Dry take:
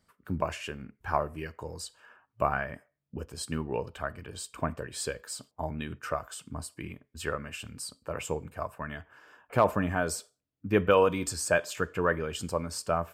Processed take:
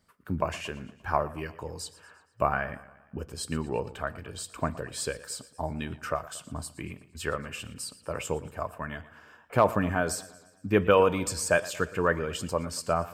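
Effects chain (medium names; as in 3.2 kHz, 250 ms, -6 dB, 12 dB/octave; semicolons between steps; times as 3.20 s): modulated delay 116 ms, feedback 53%, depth 83 cents, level -18 dB; trim +1.5 dB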